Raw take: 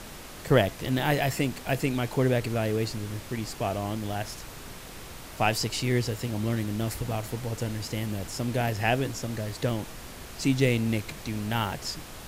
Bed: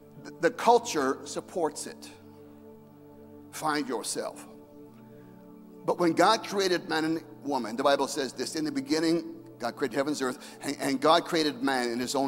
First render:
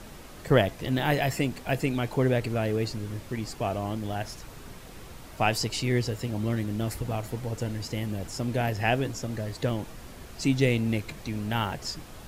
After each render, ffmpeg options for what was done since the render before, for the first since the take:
ffmpeg -i in.wav -af "afftdn=noise_reduction=6:noise_floor=-43" out.wav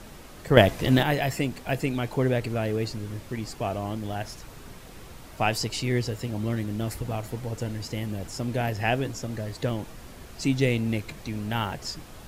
ffmpeg -i in.wav -filter_complex "[0:a]asplit=3[link_01][link_02][link_03];[link_01]atrim=end=0.572[link_04];[link_02]atrim=start=0.568:end=1.032,asetpts=PTS-STARTPTS,volume=7dB[link_05];[link_03]atrim=start=1.028[link_06];[link_04][link_05]acrossfade=duration=0.004:curve1=hsin:curve2=hsin[link_07];[link_07][link_06]acrossfade=duration=0.004:curve1=hsin:curve2=hsin" out.wav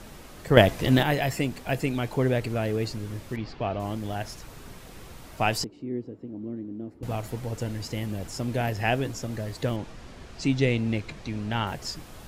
ffmpeg -i in.wav -filter_complex "[0:a]asettb=1/sr,asplit=3[link_01][link_02][link_03];[link_01]atrim=end=3.364[link_04];[link_02]atrim=start=3.36:end=3.8,asetpts=PTS-STARTPTS,afade=type=in:duration=0.004:curve=qsin,afade=type=out:start_time=0.436:duration=0.004:curve=qsin,lowpass=frequency=4300:width=0.5412,lowpass=frequency=4300:width=1.3066[link_05];[link_03]atrim=start=3.796[link_06];[link_04][link_05]acrossfade=duration=0.004:curve1=hsin:curve2=qsin[link_07];[link_07][link_06]acrossfade=duration=0.004:curve1=qsin:curve2=hsin,asettb=1/sr,asplit=3[link_08][link_09][link_10];[link_08]atrim=end=5.644[link_11];[link_09]atrim=start=5.64:end=7.03,asetpts=PTS-STARTPTS,afade=type=in:duration=0.004:curve=qsin,afade=type=out:start_time=1.386:duration=0.004:curve=qsin,bandpass=frequency=290:width_type=q:width=2.7[link_12];[link_10]atrim=start=7.026[link_13];[link_11][link_12]acrossfade=duration=0.004:curve1=hsin:curve2=qsin[link_14];[link_14][link_13]acrossfade=duration=0.004:curve1=qsin:curve2=hsin,asettb=1/sr,asplit=3[link_15][link_16][link_17];[link_15]atrim=end=9.764[link_18];[link_16]atrim=start=9.76:end=11.67,asetpts=PTS-STARTPTS,afade=type=in:duration=0.004:curve=qsin,afade=type=out:start_time=1.906:duration=0.004:curve=qsin,lowpass=6300[link_19];[link_17]atrim=start=11.666[link_20];[link_18][link_19]acrossfade=duration=0.004:curve1=hsin:curve2=qsin[link_21];[link_21][link_20]acrossfade=duration=0.004:curve1=qsin:curve2=hsin" out.wav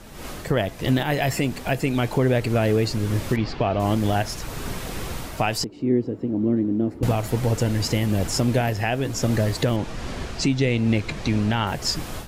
ffmpeg -i in.wav -af "dynaudnorm=framelen=140:gausssize=3:maxgain=14dB,alimiter=limit=-11.5dB:level=0:latency=1:release=459" out.wav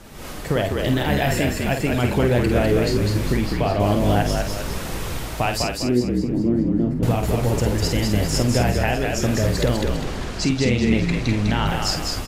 ffmpeg -i in.wav -filter_complex "[0:a]asplit=2[link_01][link_02];[link_02]adelay=49,volume=-7dB[link_03];[link_01][link_03]amix=inputs=2:normalize=0,asplit=2[link_04][link_05];[link_05]asplit=6[link_06][link_07][link_08][link_09][link_10][link_11];[link_06]adelay=201,afreqshift=-54,volume=-3.5dB[link_12];[link_07]adelay=402,afreqshift=-108,volume=-10.6dB[link_13];[link_08]adelay=603,afreqshift=-162,volume=-17.8dB[link_14];[link_09]adelay=804,afreqshift=-216,volume=-24.9dB[link_15];[link_10]adelay=1005,afreqshift=-270,volume=-32dB[link_16];[link_11]adelay=1206,afreqshift=-324,volume=-39.2dB[link_17];[link_12][link_13][link_14][link_15][link_16][link_17]amix=inputs=6:normalize=0[link_18];[link_04][link_18]amix=inputs=2:normalize=0" out.wav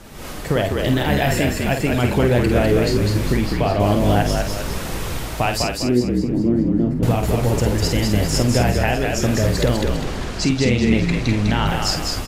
ffmpeg -i in.wav -af "volume=2dB" out.wav

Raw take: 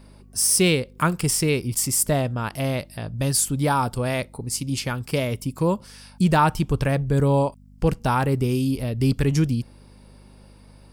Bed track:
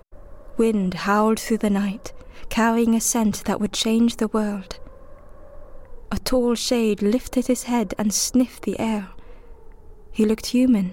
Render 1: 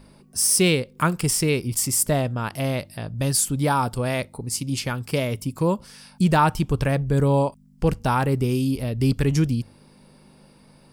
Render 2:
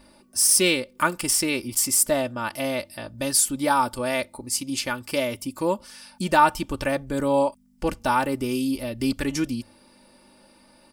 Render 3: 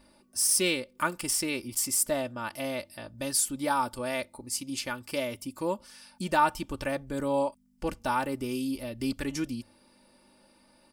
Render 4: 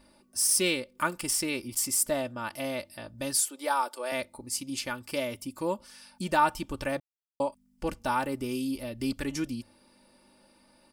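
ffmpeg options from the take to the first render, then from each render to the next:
ffmpeg -i in.wav -af "bandreject=frequency=50:width_type=h:width=4,bandreject=frequency=100:width_type=h:width=4" out.wav
ffmpeg -i in.wav -af "lowshelf=frequency=250:gain=-10,aecho=1:1:3.4:0.66" out.wav
ffmpeg -i in.wav -af "volume=-6.5dB" out.wav
ffmpeg -i in.wav -filter_complex "[0:a]asettb=1/sr,asplit=3[link_01][link_02][link_03];[link_01]atrim=end=3.414[link_04];[link_02]atrim=start=3.41:end=4.12,asetpts=PTS-STARTPTS,afade=type=in:duration=0.004:curve=qsin,afade=type=out:start_time=0.706:duration=0.004:curve=qsin,highpass=frequency=370:width=0.5412,highpass=frequency=370:width=1.3066[link_05];[link_03]atrim=start=4.116[link_06];[link_04][link_05]acrossfade=duration=0.004:curve1=hsin:curve2=qsin[link_07];[link_07][link_06]acrossfade=duration=0.004:curve1=qsin:curve2=hsin,asplit=3[link_08][link_09][link_10];[link_08]atrim=end=7,asetpts=PTS-STARTPTS,afade=type=out:start_time=6.996:duration=0.004:curve=hsin[link_11];[link_09]atrim=start=7:end=7.4,asetpts=PTS-STARTPTS,volume=0[link_12];[link_10]atrim=start=7.4,asetpts=PTS-STARTPTS,afade=type=in:duration=0.004:curve=hsin[link_13];[link_11][link_12][link_13]concat=n=3:v=0:a=1" out.wav

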